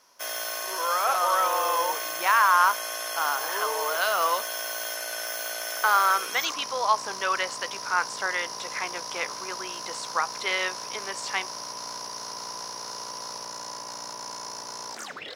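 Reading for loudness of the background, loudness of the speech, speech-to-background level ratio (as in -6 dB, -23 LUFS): -32.5 LUFS, -26.5 LUFS, 6.0 dB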